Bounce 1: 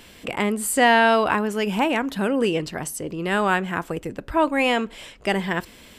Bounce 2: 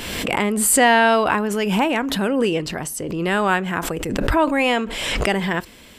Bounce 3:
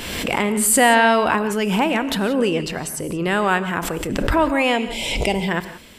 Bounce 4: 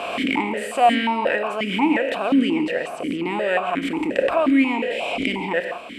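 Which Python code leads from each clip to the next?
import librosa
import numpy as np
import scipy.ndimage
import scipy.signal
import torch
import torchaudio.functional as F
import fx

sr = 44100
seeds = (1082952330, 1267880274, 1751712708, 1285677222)

y1 = fx.pre_swell(x, sr, db_per_s=31.0)
y1 = F.gain(torch.from_numpy(y1), 1.5).numpy()
y2 = fx.spec_box(y1, sr, start_s=4.77, length_s=0.71, low_hz=1000.0, high_hz=2000.0, gain_db=-16)
y2 = fx.rev_gated(y2, sr, seeds[0], gate_ms=200, shape='rising', drr_db=12.0)
y3 = fx.bin_compress(y2, sr, power=0.6)
y3 = fx.notch(y3, sr, hz=760.0, q=12.0)
y3 = fx.vowel_held(y3, sr, hz=5.6)
y3 = F.gain(torch.from_numpy(y3), 6.0).numpy()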